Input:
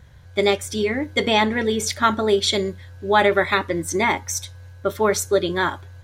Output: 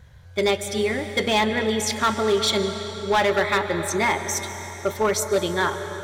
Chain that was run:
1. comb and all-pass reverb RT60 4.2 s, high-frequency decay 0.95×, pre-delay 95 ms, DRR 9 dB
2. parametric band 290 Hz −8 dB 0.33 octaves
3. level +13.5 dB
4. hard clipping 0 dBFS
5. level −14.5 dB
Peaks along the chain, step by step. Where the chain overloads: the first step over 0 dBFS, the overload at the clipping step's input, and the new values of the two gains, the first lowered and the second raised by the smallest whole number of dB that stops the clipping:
−4.0, −4.0, +9.5, 0.0, −14.5 dBFS
step 3, 9.5 dB
step 3 +3.5 dB, step 5 −4.5 dB

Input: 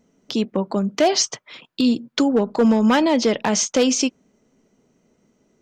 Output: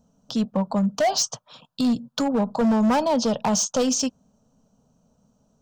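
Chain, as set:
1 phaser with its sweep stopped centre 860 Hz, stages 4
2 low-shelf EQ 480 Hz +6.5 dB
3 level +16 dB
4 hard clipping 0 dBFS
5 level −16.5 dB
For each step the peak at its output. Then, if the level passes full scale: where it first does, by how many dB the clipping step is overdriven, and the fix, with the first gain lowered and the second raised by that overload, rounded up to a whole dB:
−9.0, −8.0, +8.0, 0.0, −16.5 dBFS
step 3, 8.0 dB
step 3 +8 dB, step 5 −8.5 dB

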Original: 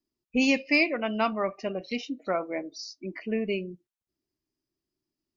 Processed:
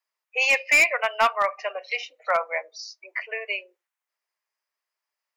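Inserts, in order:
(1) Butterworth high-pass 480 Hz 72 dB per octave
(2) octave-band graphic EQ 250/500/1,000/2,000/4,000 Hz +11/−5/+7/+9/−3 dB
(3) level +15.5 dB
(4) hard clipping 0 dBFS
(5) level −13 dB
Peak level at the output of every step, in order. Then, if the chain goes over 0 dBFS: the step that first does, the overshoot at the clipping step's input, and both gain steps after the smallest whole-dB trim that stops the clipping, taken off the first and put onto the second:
−12.0, −7.0, +8.5, 0.0, −13.0 dBFS
step 3, 8.5 dB
step 3 +6.5 dB, step 5 −4 dB

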